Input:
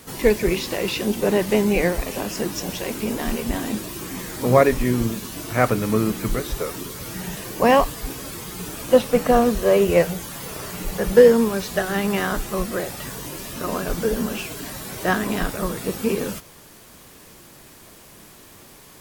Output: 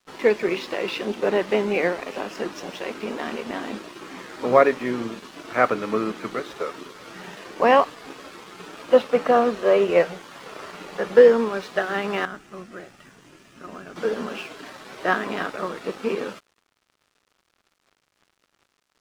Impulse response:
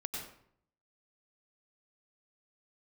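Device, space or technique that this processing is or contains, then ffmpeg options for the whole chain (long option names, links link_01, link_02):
pocket radio on a weak battery: -filter_complex "[0:a]highpass=310,lowpass=3500,aeval=exprs='sgn(val(0))*max(abs(val(0))-0.00531,0)':channel_layout=same,equalizer=frequency=1300:width_type=o:width=0.36:gain=4,asettb=1/sr,asplit=3[link_01][link_02][link_03];[link_01]atrim=end=12.254[link_04];[link_02]atrim=start=12.25:end=13.96,asetpts=PTS-STARTPTS,afade=type=in:duration=0.004:curve=qsin,afade=type=out:start_time=1.706:duration=0.004:curve=qsin,equalizer=frequency=250:width_type=o:width=1:gain=-3,equalizer=frequency=500:width_type=o:width=1:gain=-12,equalizer=frequency=1000:width_type=o:width=1:gain=-11,equalizer=frequency=2000:width_type=o:width=1:gain=-5,equalizer=frequency=4000:width_type=o:width=1:gain=-10,equalizer=frequency=16000:width_type=o:width=1:gain=-11[link_05];[link_03]atrim=start=13.956[link_06];[link_04][link_05]acrossfade=duration=0.004:curve1=hsin:curve2=qsin[link_07];[link_07][link_06]acrossfade=duration=0.004:curve1=qsin:curve2=hsin"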